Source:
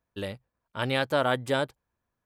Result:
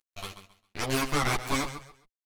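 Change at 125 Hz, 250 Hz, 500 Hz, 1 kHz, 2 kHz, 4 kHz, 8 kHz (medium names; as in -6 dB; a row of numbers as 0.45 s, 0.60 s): -0.5 dB, 0.0 dB, -7.5 dB, -1.0 dB, -1.5 dB, -0.5 dB, +13.0 dB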